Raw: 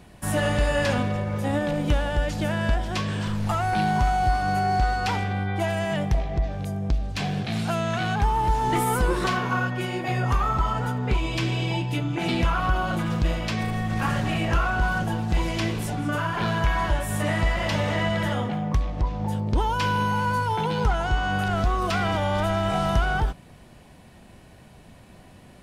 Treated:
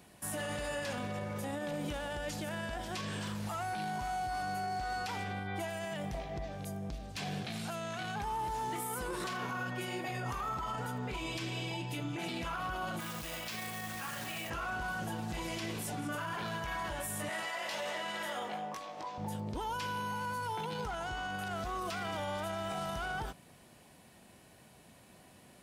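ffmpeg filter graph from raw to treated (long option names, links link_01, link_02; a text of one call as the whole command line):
ffmpeg -i in.wav -filter_complex "[0:a]asettb=1/sr,asplit=3[link_01][link_02][link_03];[link_01]atrim=end=13.004[link_04];[link_02]atrim=start=13:end=14.5,asetpts=PTS-STARTPTS,afade=type=in:duration=0.004:curve=qsin,afade=type=out:start_time=1.496:duration=0.004:curve=qsin,tiltshelf=frequency=720:gain=-4.5,acrusher=bits=3:mode=log:mix=0:aa=0.000001[link_05];[link_03]atrim=start=14.496[link_06];[link_04][link_05]acrossfade=duration=0.004:curve1=hsin:curve2=qsin[link_07];[link_07][link_06]acrossfade=duration=0.004:curve1=qsin:curve2=hsin,asettb=1/sr,asplit=3[link_08][link_09][link_10];[link_08]atrim=end=17.294[link_11];[link_09]atrim=start=17.29:end=19.18,asetpts=PTS-STARTPTS,afade=type=in:duration=0.004:curve=qsin,afade=type=out:start_time=1.886:duration=0.004:curve=qsin,highpass=450,asplit=2[link_12][link_13];[link_13]adelay=19,volume=-3.5dB[link_14];[link_12][link_14]amix=inputs=2:normalize=0,atrim=end_sample=83349[link_15];[link_10]atrim=start=19.176[link_16];[link_11][link_15]acrossfade=duration=0.004:curve1=hsin:curve2=qsin[link_17];[link_17][link_16]acrossfade=duration=0.004:curve1=qsin:curve2=hsin,highpass=frequency=190:poles=1,highshelf=frequency=6500:gain=10,alimiter=limit=-22dB:level=0:latency=1:release=28,volume=-7.5dB" out.wav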